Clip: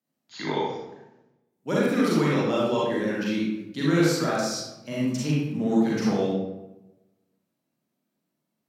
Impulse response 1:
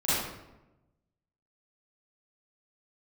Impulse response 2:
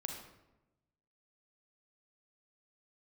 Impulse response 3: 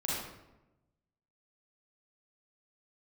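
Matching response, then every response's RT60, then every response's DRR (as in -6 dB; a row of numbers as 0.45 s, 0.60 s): 3; 1.0 s, 1.0 s, 1.0 s; -13.5 dB, 2.0 dB, -7.0 dB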